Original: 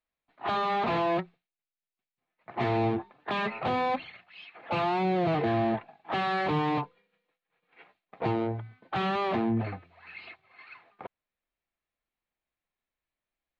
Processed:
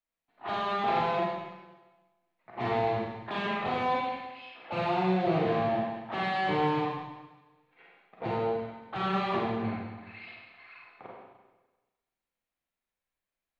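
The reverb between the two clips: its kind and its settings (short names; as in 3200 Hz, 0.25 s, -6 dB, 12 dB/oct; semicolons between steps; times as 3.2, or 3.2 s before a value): Schroeder reverb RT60 1.2 s, combs from 33 ms, DRR -4 dB; gain -6 dB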